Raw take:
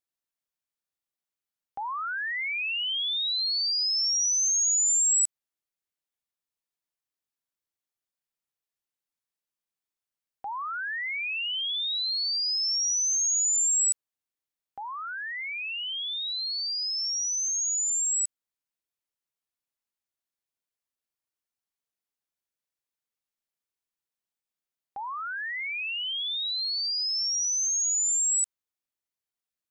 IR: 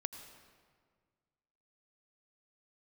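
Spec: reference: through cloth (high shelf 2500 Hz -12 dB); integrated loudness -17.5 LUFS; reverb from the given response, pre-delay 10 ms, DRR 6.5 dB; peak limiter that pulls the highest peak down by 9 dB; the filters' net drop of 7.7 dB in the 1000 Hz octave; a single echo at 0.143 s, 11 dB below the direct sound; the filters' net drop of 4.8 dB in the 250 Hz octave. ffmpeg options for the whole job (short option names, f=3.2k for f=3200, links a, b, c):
-filter_complex "[0:a]equalizer=f=250:t=o:g=-6,equalizer=f=1k:t=o:g=-7,alimiter=level_in=4dB:limit=-24dB:level=0:latency=1,volume=-4dB,aecho=1:1:143:0.282,asplit=2[a][b];[1:a]atrim=start_sample=2205,adelay=10[c];[b][c]afir=irnorm=-1:irlink=0,volume=-5.5dB[d];[a][d]amix=inputs=2:normalize=0,highshelf=f=2.5k:g=-12,volume=19dB"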